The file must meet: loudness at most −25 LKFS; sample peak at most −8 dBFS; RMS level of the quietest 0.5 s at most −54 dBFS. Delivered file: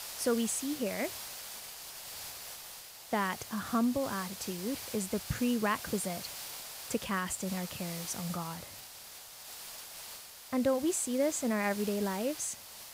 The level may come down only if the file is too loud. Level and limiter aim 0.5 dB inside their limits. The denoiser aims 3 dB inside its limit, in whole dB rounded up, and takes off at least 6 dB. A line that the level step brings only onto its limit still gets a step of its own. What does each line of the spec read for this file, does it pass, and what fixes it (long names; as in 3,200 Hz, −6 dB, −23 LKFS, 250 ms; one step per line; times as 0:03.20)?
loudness −34.5 LKFS: in spec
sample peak −18.0 dBFS: in spec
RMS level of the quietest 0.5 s −50 dBFS: out of spec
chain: broadband denoise 7 dB, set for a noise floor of −50 dBFS